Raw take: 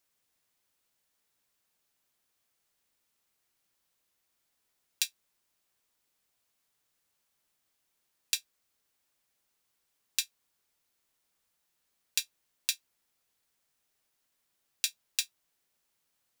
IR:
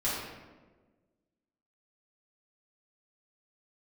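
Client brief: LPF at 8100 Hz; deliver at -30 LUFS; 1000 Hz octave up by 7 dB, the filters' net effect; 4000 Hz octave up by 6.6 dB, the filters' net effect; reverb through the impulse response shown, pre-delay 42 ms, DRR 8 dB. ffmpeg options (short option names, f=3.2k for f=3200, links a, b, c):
-filter_complex "[0:a]lowpass=8.1k,equalizer=f=1k:t=o:g=8.5,equalizer=f=4k:t=o:g=7.5,asplit=2[a][b];[1:a]atrim=start_sample=2205,adelay=42[c];[b][c]afir=irnorm=-1:irlink=0,volume=-16.5dB[d];[a][d]amix=inputs=2:normalize=0"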